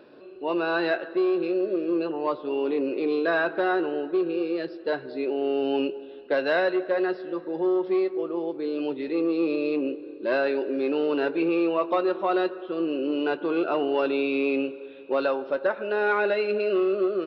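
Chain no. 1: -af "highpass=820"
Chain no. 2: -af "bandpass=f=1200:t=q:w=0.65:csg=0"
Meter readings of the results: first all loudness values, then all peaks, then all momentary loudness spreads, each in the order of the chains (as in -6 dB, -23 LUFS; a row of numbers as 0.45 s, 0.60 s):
-33.0 LUFS, -30.5 LUFS; -16.5 dBFS, -14.5 dBFS; 12 LU, 9 LU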